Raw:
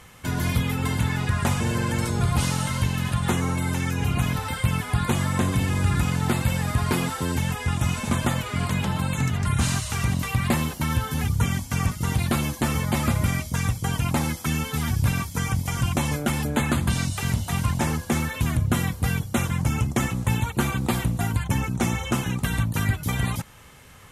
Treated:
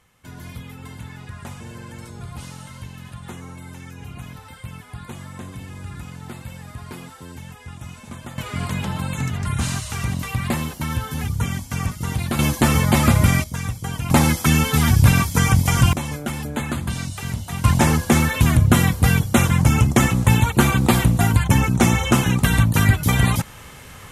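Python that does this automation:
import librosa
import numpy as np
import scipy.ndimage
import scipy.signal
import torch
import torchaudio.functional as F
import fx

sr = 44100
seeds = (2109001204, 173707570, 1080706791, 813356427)

y = fx.gain(x, sr, db=fx.steps((0.0, -12.5), (8.38, -0.5), (12.39, 7.5), (13.44, -2.0), (14.1, 9.0), (15.93, -2.5), (17.64, 8.0)))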